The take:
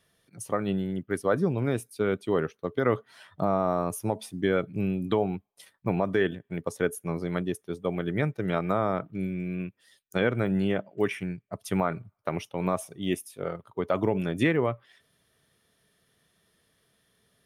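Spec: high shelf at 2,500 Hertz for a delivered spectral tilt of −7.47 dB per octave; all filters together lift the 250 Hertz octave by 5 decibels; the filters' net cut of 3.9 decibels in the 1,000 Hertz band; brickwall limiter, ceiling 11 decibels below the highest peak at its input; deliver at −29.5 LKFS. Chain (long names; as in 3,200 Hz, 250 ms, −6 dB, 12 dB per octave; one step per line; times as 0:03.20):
parametric band 250 Hz +7.5 dB
parametric band 1,000 Hz −5 dB
high-shelf EQ 2,500 Hz −5.5 dB
level +1.5 dB
brickwall limiter −18 dBFS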